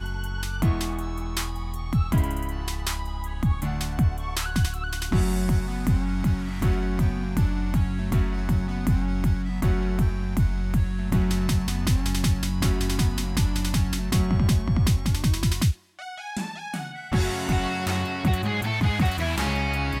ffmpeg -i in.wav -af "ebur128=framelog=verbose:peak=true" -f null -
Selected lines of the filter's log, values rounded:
Integrated loudness:
  I:         -25.4 LUFS
  Threshold: -35.5 LUFS
Loudness range:
  LRA:         3.4 LU
  Threshold: -45.4 LUFS
  LRA low:   -27.3 LUFS
  LRA high:  -23.9 LUFS
True peak:
  Peak:      -13.0 dBFS